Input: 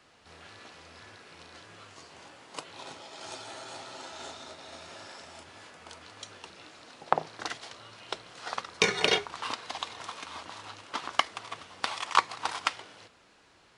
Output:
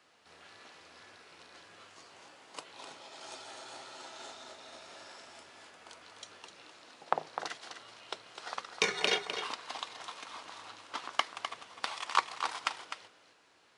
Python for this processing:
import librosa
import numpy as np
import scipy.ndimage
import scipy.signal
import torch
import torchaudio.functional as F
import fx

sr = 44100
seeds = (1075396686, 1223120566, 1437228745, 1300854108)

y = fx.highpass(x, sr, hz=290.0, slope=6)
y = y + 10.0 ** (-8.5 / 20.0) * np.pad(y, (int(254 * sr / 1000.0), 0))[:len(y)]
y = y * librosa.db_to_amplitude(-4.5)